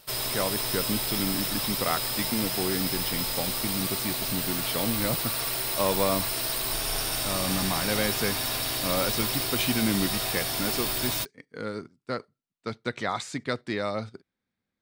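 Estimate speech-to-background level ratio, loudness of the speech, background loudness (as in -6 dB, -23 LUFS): -4.5 dB, -31.5 LUFS, -27.0 LUFS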